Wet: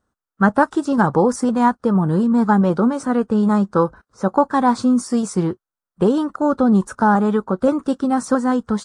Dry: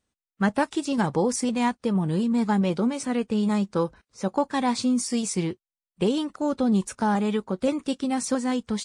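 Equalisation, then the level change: resonant high shelf 1.8 kHz -8.5 dB, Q 3; +7.0 dB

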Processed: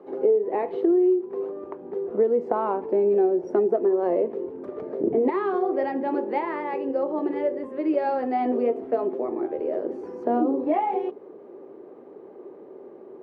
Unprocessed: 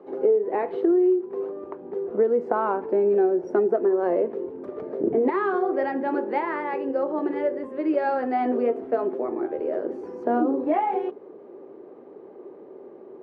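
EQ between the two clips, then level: dynamic bell 1.5 kHz, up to -8 dB, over -48 dBFS, Q 2.7; 0.0 dB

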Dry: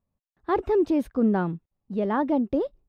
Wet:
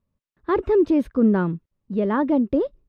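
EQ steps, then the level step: low-pass 3.4 kHz 6 dB/octave; peaking EQ 760 Hz -11 dB 0.3 oct; +4.5 dB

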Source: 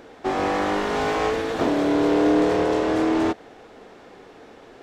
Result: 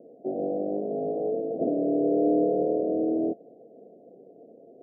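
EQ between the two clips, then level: Bessel high-pass 220 Hz, order 8; rippled Chebyshev low-pass 700 Hz, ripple 3 dB; distance through air 420 m; 0.0 dB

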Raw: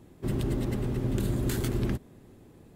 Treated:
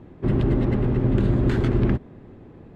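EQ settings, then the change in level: low-pass 2.2 kHz 12 dB/octave; +8.5 dB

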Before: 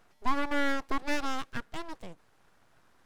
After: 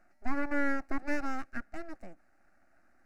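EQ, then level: low-pass 3.2 kHz 6 dB/octave; static phaser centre 670 Hz, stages 8; 0.0 dB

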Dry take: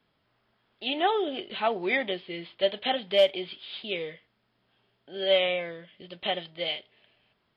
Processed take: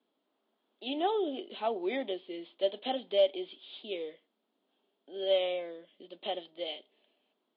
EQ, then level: elliptic band-pass 260–3700 Hz, stop band 40 dB; peaking EQ 1.8 kHz -14.5 dB 1.9 oct; 0.0 dB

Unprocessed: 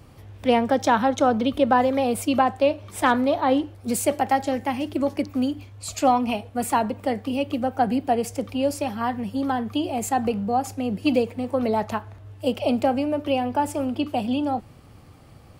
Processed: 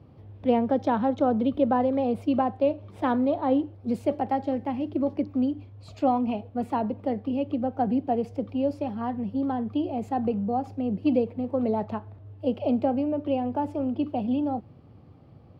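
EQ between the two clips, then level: high-pass 89 Hz; distance through air 340 m; peaking EQ 1.8 kHz -10.5 dB 2.1 oct; 0.0 dB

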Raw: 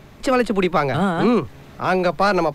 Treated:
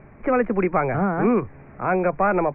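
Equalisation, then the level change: Chebyshev low-pass 2.4 kHz, order 6; distance through air 130 m; -1.5 dB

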